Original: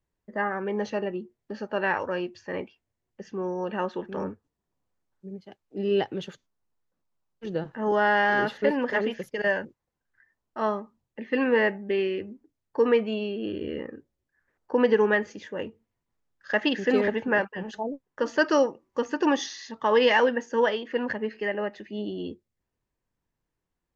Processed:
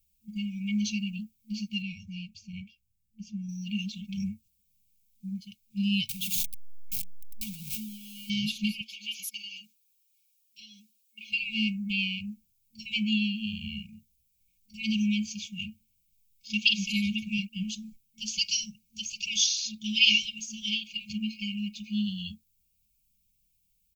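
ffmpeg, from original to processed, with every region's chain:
-filter_complex "[0:a]asettb=1/sr,asplit=3[a][b][c];[a]atrim=end=1.824[d];[b]atrim=start=1.82:end=3.49,asetpts=PTS-STARTPTS,afade=t=in:d=0.004:c=qsin,afade=t=out:st=1.666:d=0.004:c=qsin,lowpass=f=2.9k:p=1,equalizer=f=1.5k:w=0.32:g=-9[e];[c]atrim=start=3.486[f];[d][e]acrossfade=d=0.004:c1=hsin:c2=qsin[g];[g][f]acrossfade=d=0.004:c1=qsin:c2=hsin,asettb=1/sr,asplit=3[h][i][j];[h]atrim=end=6.094[k];[i]atrim=start=6.09:end=8.3,asetpts=PTS-STARTPTS,afade=t=in:d=0.004:c=qsin,afade=t=out:st=2.206:d=0.004:c=qsin,aeval=exprs='val(0)+0.5*0.0178*sgn(val(0))':c=same,bandreject=f=60:t=h:w=6,bandreject=f=120:t=h:w=6,bandreject=f=180:t=h:w=6,bandreject=f=240:t=h:w=6,bandreject=f=300:t=h:w=6,bandreject=f=360:t=h:w=6,bandreject=f=420:t=h:w=6,bandreject=f=480:t=h:w=6,bandreject=f=540:t=h:w=6,acompressor=threshold=-38dB:ratio=6:attack=3.2:release=140:knee=1:detection=peak[l];[j]atrim=start=8.296[m];[k][l]acrossfade=d=0.004:c1=hsin:c2=qsin[n];[n][m]acrossfade=d=0.004:c1=qsin:c2=hsin,asettb=1/sr,asplit=3[o][p][q];[o]atrim=end=8.814[r];[p]atrim=start=8.81:end=11.31,asetpts=PTS-STARTPTS,afade=t=in:d=0.004:c=qsin,afade=t=out:st=2.496:d=0.004:c=qsin,highpass=f=400:w=0.5412,highpass=f=400:w=1.3066,aecho=1:1:6:0.96,atrim=end_sample=110250,acompressor=threshold=-32dB:ratio=4:attack=3.2:release=140:knee=1:detection=peak[s];[q]atrim=start=11.306[t];[r][s]acrossfade=d=0.004:c1=hsin:c2=qsin[u];[u][t]acrossfade=d=0.004:c1=qsin:c2=hsin,aecho=1:1:3.6:0.48,afftfilt=real='re*(1-between(b*sr/4096,220,2200))':imag='im*(1-between(b*sr/4096,220,2200))':win_size=4096:overlap=0.75,aemphasis=mode=production:type=50fm,volume=5.5dB"

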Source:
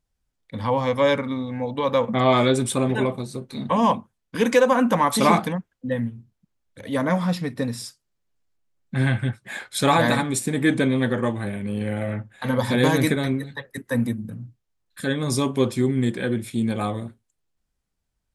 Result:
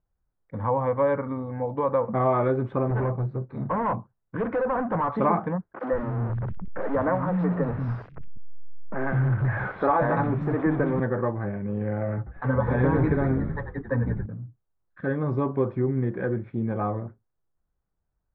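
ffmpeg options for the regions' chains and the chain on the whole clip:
-filter_complex "[0:a]asettb=1/sr,asplit=3[a][b][c];[a]atrim=end=2.904[d];[b]atrim=start=2.9:end=5.1,asetpts=PTS-STARTPTS,afade=t=in:d=0.004:c=qsin,afade=t=out:st=2.196:d=0.004:c=qsin,equalizer=f=120:w=5:g=10,asoftclip=type=hard:threshold=-21dB[e];[c]atrim=start=5.096[f];[d][e]acrossfade=d=0.004:c1=hsin:c2=qsin[g];[g][f]acrossfade=d=0.004:c1=qsin:c2=hsin,asettb=1/sr,asplit=3[h][i][j];[h]atrim=end=5.744[k];[i]atrim=start=5.74:end=11,asetpts=PTS-STARTPTS,afade=t=in:d=0.004:c=qsin,afade=t=out:st=5.256:d=0.004:c=qsin,aeval=exprs='val(0)+0.5*0.0841*sgn(val(0))':c=same,acrossover=split=230|2600[l][m][n];[n]adelay=60[o];[l]adelay=190[p];[p][m][o]amix=inputs=3:normalize=0,atrim=end_sample=231966[q];[j]atrim=start=10.996[r];[k][q]acrossfade=d=0.004:c1=hsin:c2=qsin[s];[s][r]acrossfade=d=0.004:c1=qsin:c2=hsin,asettb=1/sr,asplit=3[t][u][v];[t]atrim=end=12.174[w];[u]atrim=start=12.17:end=14.26,asetpts=PTS-STARTPTS,afade=t=in:d=0.004:c=qsin,afade=t=out:st=2.086:d=0.004:c=qsin,aecho=1:1:7.1:0.72,atrim=end_sample=92169,asplit=8[x][y][z][aa][ab][ac][ad][ae];[y]adelay=92,afreqshift=-51,volume=-9.5dB[af];[z]adelay=184,afreqshift=-102,volume=-14.4dB[ag];[aa]adelay=276,afreqshift=-153,volume=-19.3dB[ah];[ab]adelay=368,afreqshift=-204,volume=-24.1dB[ai];[ac]adelay=460,afreqshift=-255,volume=-29dB[aj];[ad]adelay=552,afreqshift=-306,volume=-33.9dB[ak];[ae]adelay=644,afreqshift=-357,volume=-38.8dB[al];[x][af][ag][ah][ai][aj][ak][al]amix=inputs=8:normalize=0,atrim=end_sample=92169[am];[v]atrim=start=14.256[an];[w][am]acrossfade=d=0.004:c1=hsin:c2=qsin[ao];[ao][an]acrossfade=d=0.004:c1=qsin:c2=hsin,lowpass=f=1.5k:w=0.5412,lowpass=f=1.5k:w=1.3066,equalizer=f=240:w=4.5:g=-7.5,acompressor=threshold=-21dB:ratio=2"

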